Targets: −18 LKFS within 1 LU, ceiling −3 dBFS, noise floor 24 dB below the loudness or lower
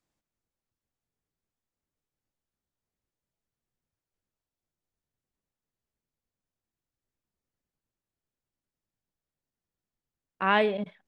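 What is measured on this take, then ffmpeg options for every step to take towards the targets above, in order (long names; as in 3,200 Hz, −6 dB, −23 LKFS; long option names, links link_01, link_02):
integrated loudness −26.0 LKFS; sample peak −9.5 dBFS; target loudness −18.0 LKFS
→ -af "volume=8dB,alimiter=limit=-3dB:level=0:latency=1"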